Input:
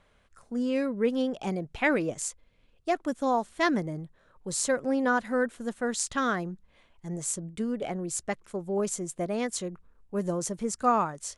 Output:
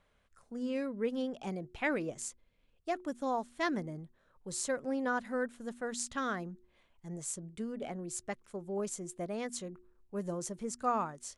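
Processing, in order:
hum removal 120.5 Hz, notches 3
level −7.5 dB

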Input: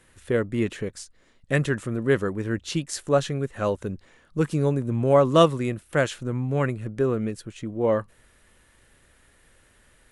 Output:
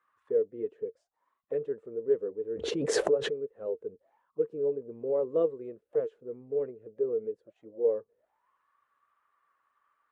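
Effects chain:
spectral magnitudes quantised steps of 15 dB
envelope filter 450–1,200 Hz, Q 14, down, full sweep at −28 dBFS
0:02.53–0:03.42: background raised ahead of every attack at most 25 dB per second
level +4.5 dB

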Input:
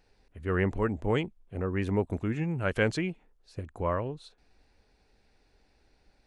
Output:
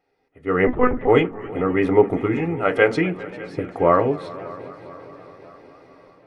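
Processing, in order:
0:02.35–0:02.96: low-shelf EQ 140 Hz −11.5 dB
automatic gain control gain up to 16.5 dB
echo machine with several playback heads 200 ms, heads second and third, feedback 56%, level −20.5 dB
convolution reverb RT60 0.25 s, pre-delay 3 ms, DRR 6.5 dB
0:00.67–0:01.08: one-pitch LPC vocoder at 8 kHz 250 Hz
feedback echo with a swinging delay time 262 ms, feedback 74%, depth 154 cents, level −22 dB
level −12.5 dB

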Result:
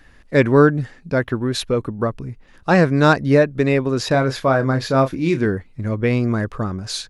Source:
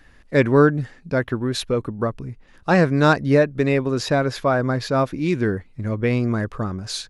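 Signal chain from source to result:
0:04.08–0:05.46: double-tracking delay 30 ms −9.5 dB
level +2 dB

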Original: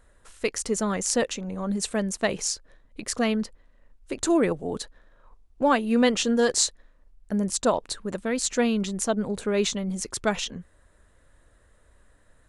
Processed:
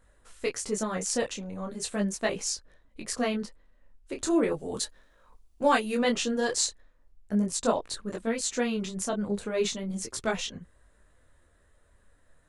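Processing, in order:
0:04.52–0:05.95: high-shelf EQ 3,200 Hz +11.5 dB
micro pitch shift up and down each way 13 cents

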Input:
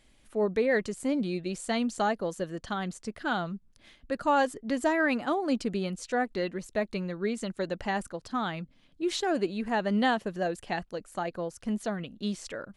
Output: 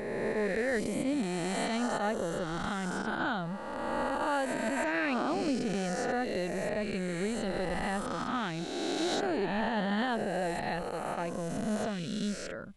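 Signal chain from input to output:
peak hold with a rise ahead of every peak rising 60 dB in 2.41 s
low-shelf EQ 190 Hz +8 dB
brickwall limiter −15.5 dBFS, peak gain reduction 7.5 dB
level −6.5 dB

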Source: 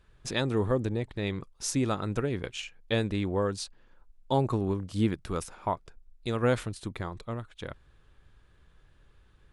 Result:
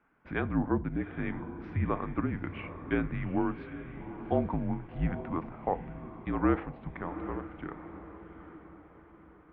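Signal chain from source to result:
single-sideband voice off tune −170 Hz 240–2,400 Hz
feedback delay with all-pass diffusion 785 ms, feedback 47%, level −11 dB
feedback delay network reverb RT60 0.43 s, high-frequency decay 0.85×, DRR 13.5 dB

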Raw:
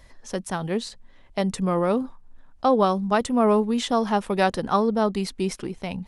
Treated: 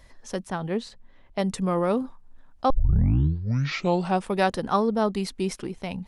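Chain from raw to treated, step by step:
0:00.46–0:01.39: high-shelf EQ 4,800 Hz −11 dB
0:02.70: tape start 1.60 s
level −1.5 dB

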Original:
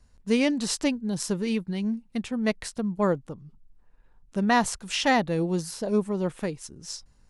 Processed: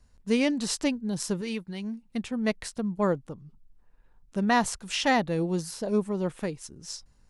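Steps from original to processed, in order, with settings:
0:01.41–0:02.03: low-shelf EQ 440 Hz −6.5 dB
level −1.5 dB

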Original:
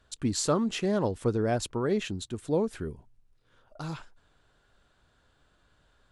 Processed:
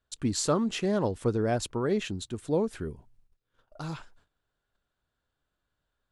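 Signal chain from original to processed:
noise gate −60 dBFS, range −16 dB

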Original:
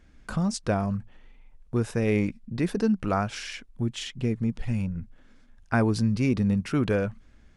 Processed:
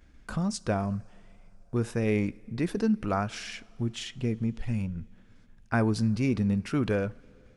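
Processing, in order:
downward expander −49 dBFS
upward compression, threshold −45 dBFS
coupled-rooms reverb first 0.37 s, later 3.5 s, from −16 dB, DRR 18 dB
level −2.5 dB

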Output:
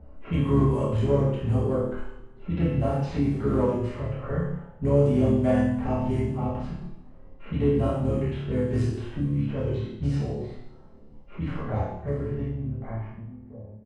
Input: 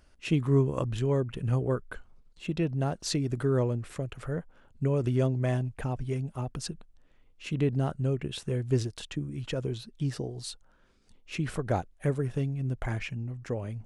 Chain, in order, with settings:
fade-out on the ending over 3.49 s
mains-hum notches 60/120/180 Hz
comb filter 1 ms, depth 35%
dynamic equaliser 5,800 Hz, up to −5 dB, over −53 dBFS, Q 0.83
harmonic and percussive parts rebalanced percussive −13 dB
parametric band 130 Hz −8 dB 0.53 octaves
pitch-shifted copies added −12 semitones −11 dB, −3 semitones −8 dB
in parallel at −10 dB: hard clipping −31.5 dBFS, distortion −7 dB
on the sum: low-pass that shuts in the quiet parts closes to 470 Hz, open at −27.5 dBFS
on a send: flutter between parallel walls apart 4.8 metres, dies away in 0.35 s
on the sum: coupled-rooms reverb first 0.65 s, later 2.2 s, from −27 dB, DRR −6.5 dB
multiband upward and downward compressor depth 40%

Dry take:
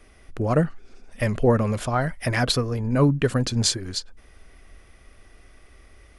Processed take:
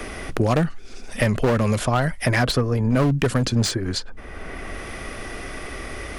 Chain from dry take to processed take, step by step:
gain into a clipping stage and back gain 17.5 dB
multiband upward and downward compressor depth 70%
level +4 dB

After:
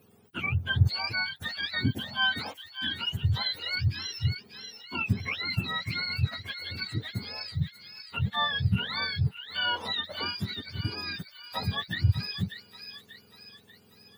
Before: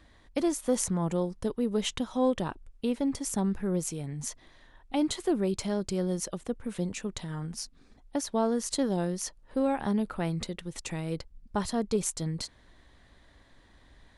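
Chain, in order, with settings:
frequency axis turned over on the octave scale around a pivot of 890 Hz
delay with a high-pass on its return 589 ms, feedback 48%, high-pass 1,800 Hz, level −7 dB

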